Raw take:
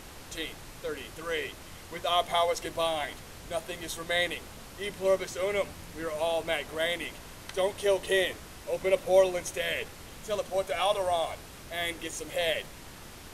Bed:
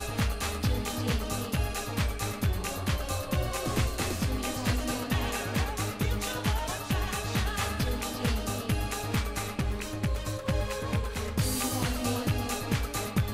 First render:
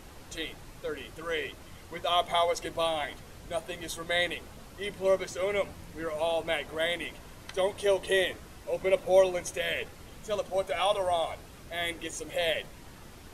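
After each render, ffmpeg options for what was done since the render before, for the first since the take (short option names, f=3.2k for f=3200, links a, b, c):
-af "afftdn=nr=6:nf=-47"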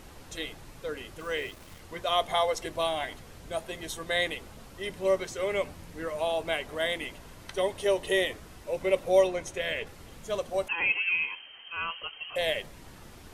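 -filter_complex "[0:a]asettb=1/sr,asplit=3[a][b][c];[a]atrim=end=1.204[d];[b]atrim=start=1.2:end=1.8,asetpts=PTS-STARTPTS,afade=t=in:d=0.004:c=qsin,afade=t=out:st=0.596:d=0.004:c=qsin,aeval=exprs='val(0)*gte(abs(val(0)),0.00398)':c=same[e];[c]atrim=start=1.796[f];[d][e]acrossfade=d=0.004:c1=hsin:c2=qsin[g];[g][f]acrossfade=d=0.004:c1=qsin:c2=hsin,asettb=1/sr,asplit=3[h][i][j];[h]atrim=end=9.274[k];[i]atrim=start=9.27:end=9.87,asetpts=PTS-STARTPTS,afade=t=in:d=0.004:c=qsin,afade=t=out:st=0.596:d=0.004:c=qsin,highshelf=f=8.5k:g=-11[l];[j]atrim=start=9.866[m];[k][l]acrossfade=d=0.004:c1=hsin:c2=qsin[n];[n][m]acrossfade=d=0.004:c1=qsin:c2=hsin,asettb=1/sr,asplit=3[o][p][q];[o]atrim=end=10.684[r];[p]atrim=start=10.68:end=12.36,asetpts=PTS-STARTPTS,afade=t=in:d=0.004:c=qsin,afade=t=out:st=1.676:d=0.004:c=qsin,lowpass=f=2.7k:t=q:w=0.5098,lowpass=f=2.7k:t=q:w=0.6013,lowpass=f=2.7k:t=q:w=0.9,lowpass=f=2.7k:t=q:w=2.563,afreqshift=-3200[s];[q]atrim=start=12.356[t];[r][s]acrossfade=d=0.004:c1=hsin:c2=qsin[u];[u][t]acrossfade=d=0.004:c1=qsin:c2=hsin"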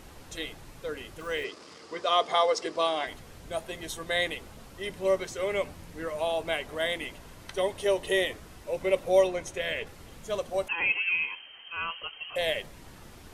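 -filter_complex "[0:a]asettb=1/sr,asplit=3[a][b][c];[a]atrim=end=1.444[d];[b]atrim=start=1.44:end=3.07,asetpts=PTS-STARTPTS,afade=t=in:d=0.004:c=qsin,afade=t=out:st=1.626:d=0.004:c=qsin,highpass=220,equalizer=f=300:t=q:w=4:g=4,equalizer=f=440:t=q:w=4:g=8,equalizer=f=1.2k:t=q:w=4:g=6,equalizer=f=4.9k:t=q:w=4:g=10,lowpass=f=8.5k:w=0.5412,lowpass=f=8.5k:w=1.3066[e];[c]atrim=start=3.066[f];[d][e]acrossfade=d=0.004:c1=hsin:c2=qsin[g];[g][f]acrossfade=d=0.004:c1=qsin:c2=hsin"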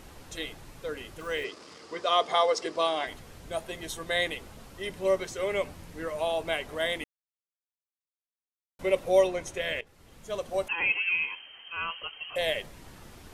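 -filter_complex "[0:a]asplit=4[a][b][c][d];[a]atrim=end=7.04,asetpts=PTS-STARTPTS,afade=t=out:st=7.036:d=0.004:c=hsin[e];[b]atrim=start=7.04:end=8.79,asetpts=PTS-STARTPTS,volume=0[f];[c]atrim=start=8.79:end=9.81,asetpts=PTS-STARTPTS,afade=t=in:d=0.004:c=hsin,afade=t=out:st=1.016:d=0.004:c=hsin:silence=0.133352[g];[d]atrim=start=9.81,asetpts=PTS-STARTPTS,afade=t=in:d=0.74:silence=0.133352[h];[e][f][g][h]concat=n=4:v=0:a=1"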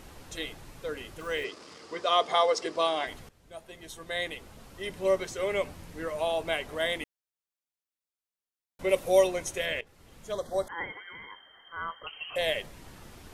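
-filter_complex "[0:a]asettb=1/sr,asplit=3[a][b][c];[a]atrim=end=8.894[d];[b]atrim=start=8.89:end=9.66,asetpts=PTS-STARTPTS,afade=t=in:d=0.004:c=qsin,afade=t=out:st=0.766:d=0.004:c=qsin,highshelf=f=6.5k:g=10.5[e];[c]atrim=start=9.656[f];[d][e]acrossfade=d=0.004:c1=hsin:c2=qsin[g];[g][f]acrossfade=d=0.004:c1=qsin:c2=hsin,asettb=1/sr,asplit=3[h][i][j];[h]atrim=end=10.324[k];[i]atrim=start=10.32:end=12.07,asetpts=PTS-STARTPTS,afade=t=in:d=0.004:c=qsin,afade=t=out:st=1.746:d=0.004:c=qsin,asuperstop=centerf=2600:order=8:qfactor=2.2[l];[j]atrim=start=12.066[m];[k][l]acrossfade=d=0.004:c1=hsin:c2=qsin[n];[n][m]acrossfade=d=0.004:c1=qsin:c2=hsin,asplit=2[o][p];[o]atrim=end=3.29,asetpts=PTS-STARTPTS,afade=t=out:st=3.286:d=0.004:c=hsin:silence=0.141254[q];[p]atrim=start=3.29,asetpts=PTS-STARTPTS,afade=t=in:d=1.76:silence=0.141254[r];[q][r]concat=n=2:v=0:a=1"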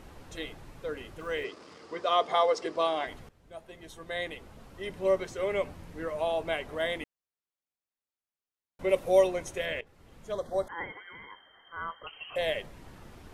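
-af "highshelf=f=3k:g=-8.5"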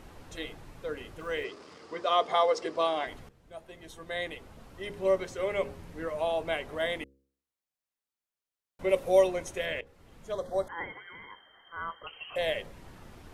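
-af "bandreject=f=67.89:t=h:w=4,bandreject=f=135.78:t=h:w=4,bandreject=f=203.67:t=h:w=4,bandreject=f=271.56:t=h:w=4,bandreject=f=339.45:t=h:w=4,bandreject=f=407.34:t=h:w=4,bandreject=f=475.23:t=h:w=4,bandreject=f=543.12:t=h:w=4"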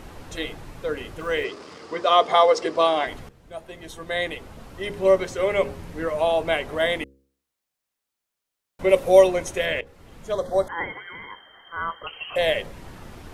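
-af "volume=8.5dB"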